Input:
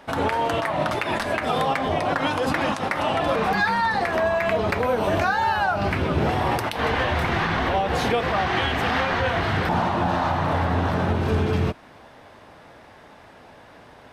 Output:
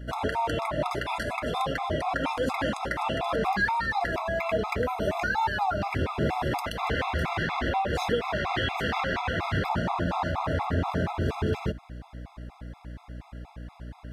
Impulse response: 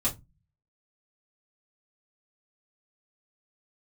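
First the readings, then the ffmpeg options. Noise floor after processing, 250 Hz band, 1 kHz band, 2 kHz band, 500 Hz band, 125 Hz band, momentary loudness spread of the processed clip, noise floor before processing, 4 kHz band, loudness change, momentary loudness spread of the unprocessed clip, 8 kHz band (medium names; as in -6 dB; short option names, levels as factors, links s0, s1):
-54 dBFS, -5.5 dB, -5.5 dB, -5.5 dB, -6.0 dB, -5.5 dB, 17 LU, -48 dBFS, -5.5 dB, -5.5 dB, 3 LU, -6.0 dB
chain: -af "aeval=exprs='val(0)+0.0178*(sin(2*PI*60*n/s)+sin(2*PI*2*60*n/s)/2+sin(2*PI*3*60*n/s)/3+sin(2*PI*4*60*n/s)/4+sin(2*PI*5*60*n/s)/5)':c=same,afftfilt=real='re*gt(sin(2*PI*4.2*pts/sr)*(1-2*mod(floor(b*sr/1024/680),2)),0)':imag='im*gt(sin(2*PI*4.2*pts/sr)*(1-2*mod(floor(b*sr/1024/680),2)),0)':win_size=1024:overlap=0.75,volume=0.75"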